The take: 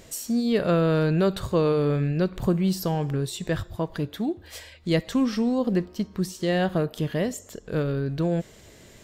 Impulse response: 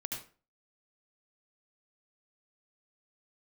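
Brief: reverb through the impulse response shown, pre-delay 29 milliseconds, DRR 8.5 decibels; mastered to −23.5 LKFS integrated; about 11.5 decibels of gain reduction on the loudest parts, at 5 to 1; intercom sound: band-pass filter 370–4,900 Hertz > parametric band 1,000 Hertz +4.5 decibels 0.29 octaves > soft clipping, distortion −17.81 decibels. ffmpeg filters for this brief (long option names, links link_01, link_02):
-filter_complex "[0:a]acompressor=threshold=-31dB:ratio=5,asplit=2[link_01][link_02];[1:a]atrim=start_sample=2205,adelay=29[link_03];[link_02][link_03]afir=irnorm=-1:irlink=0,volume=-9dB[link_04];[link_01][link_04]amix=inputs=2:normalize=0,highpass=370,lowpass=4900,equalizer=frequency=1000:width_type=o:width=0.29:gain=4.5,asoftclip=threshold=-28.5dB,volume=16.5dB"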